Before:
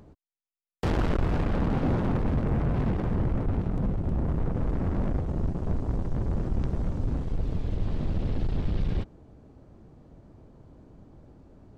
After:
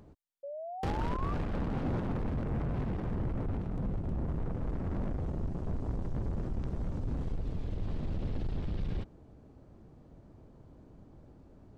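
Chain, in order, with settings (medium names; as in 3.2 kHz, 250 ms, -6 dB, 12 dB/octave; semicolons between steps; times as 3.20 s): peak limiter -24 dBFS, peak gain reduction 8 dB; painted sound rise, 0.43–1.34 s, 550–1200 Hz -37 dBFS; trim -3.5 dB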